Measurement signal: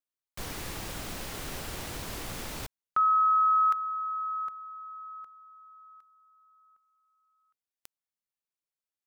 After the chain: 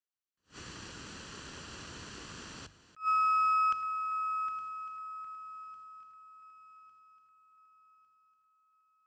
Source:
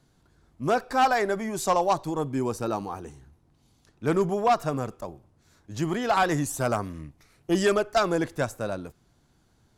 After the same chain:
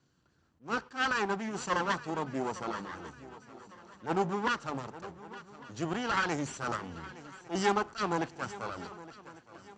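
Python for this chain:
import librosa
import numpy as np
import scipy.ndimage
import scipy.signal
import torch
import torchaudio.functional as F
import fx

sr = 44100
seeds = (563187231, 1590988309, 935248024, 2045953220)

p1 = fx.lower_of_two(x, sr, delay_ms=0.69)
p2 = scipy.signal.sosfilt(scipy.signal.butter(8, 7500.0, 'lowpass', fs=sr, output='sos'), p1)
p3 = fx.dynamic_eq(p2, sr, hz=850.0, q=3.5, threshold_db=-48.0, ratio=4.0, max_db=7)
p4 = scipy.signal.sosfilt(scipy.signal.butter(2, 55.0, 'highpass', fs=sr, output='sos'), p3)
p5 = fx.low_shelf(p4, sr, hz=120.0, db=-5.0)
p6 = fx.hum_notches(p5, sr, base_hz=50, count=3)
p7 = p6 + fx.echo_swing(p6, sr, ms=1153, ratio=3, feedback_pct=38, wet_db=-17.5, dry=0)
p8 = fx.attack_slew(p7, sr, db_per_s=270.0)
y = p8 * 10.0 ** (-4.5 / 20.0)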